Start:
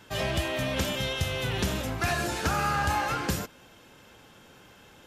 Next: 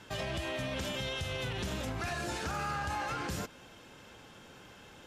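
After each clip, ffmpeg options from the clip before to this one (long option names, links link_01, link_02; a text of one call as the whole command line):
ffmpeg -i in.wav -af "lowpass=10000,alimiter=level_in=3.5dB:limit=-24dB:level=0:latency=1:release=114,volume=-3.5dB" out.wav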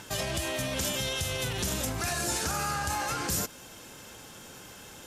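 ffmpeg -i in.wav -filter_complex "[0:a]acrossover=split=4000[link_01][link_02];[link_01]acompressor=mode=upward:threshold=-49dB:ratio=2.5[link_03];[link_02]crystalizer=i=3.5:c=0[link_04];[link_03][link_04]amix=inputs=2:normalize=0,volume=3.5dB" out.wav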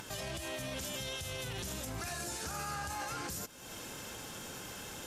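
ffmpeg -i in.wav -af "acompressor=mode=upward:threshold=-37dB:ratio=2.5,alimiter=level_in=5dB:limit=-24dB:level=0:latency=1:release=257,volume=-5dB,volume=-1.5dB" out.wav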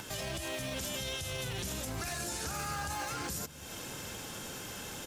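ffmpeg -i in.wav -filter_complex "[0:a]acrossover=split=280|890|7300[link_01][link_02][link_03][link_04];[link_01]aecho=1:1:740:0.335[link_05];[link_02]acrusher=samples=12:mix=1:aa=0.000001:lfo=1:lforange=7.2:lforate=2[link_06];[link_05][link_06][link_03][link_04]amix=inputs=4:normalize=0,volume=2.5dB" out.wav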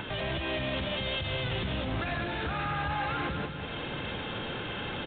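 ffmpeg -i in.wav -af "aresample=8000,asoftclip=type=tanh:threshold=-36.5dB,aresample=44100,aecho=1:1:197|394|591|788|985|1182:0.398|0.195|0.0956|0.0468|0.023|0.0112,volume=9dB" out.wav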